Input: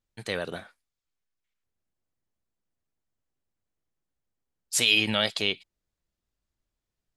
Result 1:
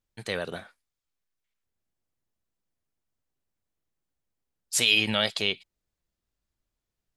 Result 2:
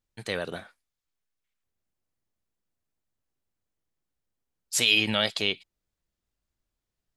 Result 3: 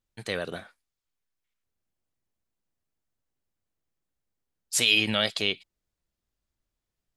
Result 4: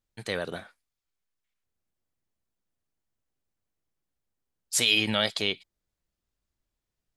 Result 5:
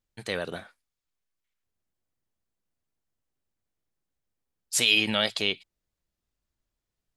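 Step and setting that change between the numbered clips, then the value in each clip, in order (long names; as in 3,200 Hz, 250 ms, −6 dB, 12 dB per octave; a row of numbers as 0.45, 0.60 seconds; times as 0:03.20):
dynamic equaliser, frequency: 300, 9,200, 890, 2,700, 110 Hertz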